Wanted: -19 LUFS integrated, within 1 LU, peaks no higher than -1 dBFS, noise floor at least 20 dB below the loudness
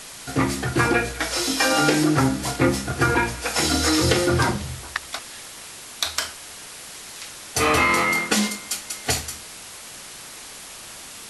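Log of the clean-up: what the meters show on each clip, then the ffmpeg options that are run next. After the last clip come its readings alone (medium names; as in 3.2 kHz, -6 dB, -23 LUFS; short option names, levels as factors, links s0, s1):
noise floor -40 dBFS; noise floor target -42 dBFS; loudness -21.5 LUFS; peak level -4.0 dBFS; loudness target -19.0 LUFS
-> -af "afftdn=nr=6:nf=-40"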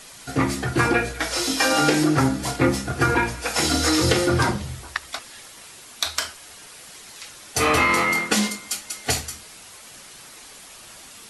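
noise floor -44 dBFS; loudness -21.5 LUFS; peak level -4.5 dBFS; loudness target -19.0 LUFS
-> -af "volume=1.33"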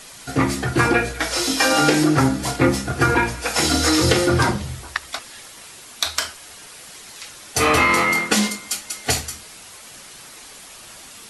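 loudness -19.0 LUFS; peak level -2.0 dBFS; noise floor -42 dBFS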